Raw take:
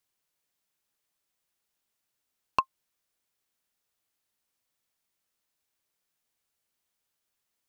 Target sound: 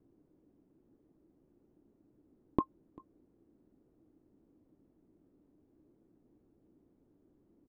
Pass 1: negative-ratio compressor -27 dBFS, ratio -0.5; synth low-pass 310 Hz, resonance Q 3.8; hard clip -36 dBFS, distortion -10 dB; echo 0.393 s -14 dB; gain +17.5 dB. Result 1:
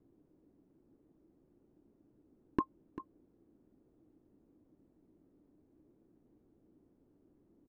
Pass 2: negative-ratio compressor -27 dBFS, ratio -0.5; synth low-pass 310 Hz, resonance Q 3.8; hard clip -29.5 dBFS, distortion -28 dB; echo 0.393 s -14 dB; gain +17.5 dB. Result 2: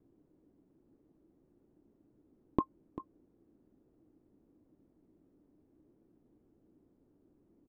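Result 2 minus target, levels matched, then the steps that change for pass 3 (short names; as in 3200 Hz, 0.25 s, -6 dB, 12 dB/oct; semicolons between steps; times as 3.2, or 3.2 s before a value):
echo-to-direct +10.5 dB
change: echo 0.393 s -24.5 dB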